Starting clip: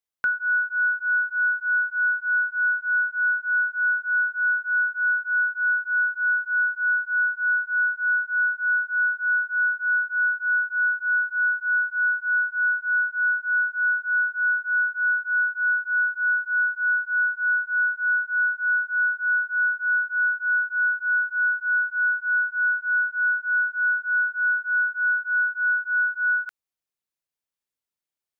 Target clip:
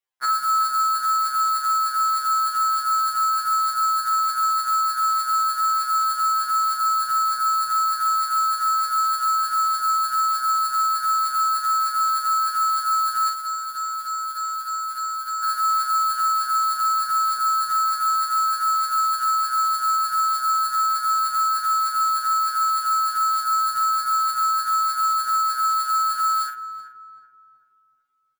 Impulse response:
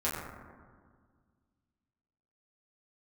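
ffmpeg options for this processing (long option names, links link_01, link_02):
-filter_complex "[0:a]agate=range=-7dB:threshold=-30dB:ratio=16:detection=peak,equalizer=frequency=1300:width_type=o:width=2.3:gain=10,asettb=1/sr,asplit=3[link_01][link_02][link_03];[link_01]atrim=end=13.274[link_04];[link_02]atrim=start=13.27:end=15.44,asetpts=PTS-STARTPTS,afade=type=in:duration=0.004:curve=qsin,afade=type=out:start_time=2.166:duration=0.004:curve=qsin,acompressor=threshold=-23dB:ratio=3[link_05];[link_03]atrim=start=15.436[link_06];[link_04][link_05]acrossfade=duration=0.004:curve1=hsin:curve2=qsin[link_07];[link_07][link_06]acrossfade=duration=0.004:curve1=qsin:curve2=hsin,asoftclip=type=tanh:threshold=-20.5dB,acrusher=bits=2:mode=log:mix=0:aa=0.000001,tremolo=f=170:d=0.75,asplit=2[link_08][link_09];[link_09]adelay=43,volume=-5.5dB[link_10];[link_08][link_10]amix=inputs=2:normalize=0,asplit=2[link_11][link_12];[link_12]adelay=380,lowpass=frequency=1300:poles=1,volume=-9dB,asplit=2[link_13][link_14];[link_14]adelay=380,lowpass=frequency=1300:poles=1,volume=0.46,asplit=2[link_15][link_16];[link_16]adelay=380,lowpass=frequency=1300:poles=1,volume=0.46,asplit=2[link_17][link_18];[link_18]adelay=380,lowpass=frequency=1300:poles=1,volume=0.46,asplit=2[link_19][link_20];[link_20]adelay=380,lowpass=frequency=1300:poles=1,volume=0.46[link_21];[link_11][link_13][link_15][link_17][link_19][link_21]amix=inputs=6:normalize=0,afftfilt=real='re*2.45*eq(mod(b,6),0)':imag='im*2.45*eq(mod(b,6),0)':win_size=2048:overlap=0.75,volume=8.5dB"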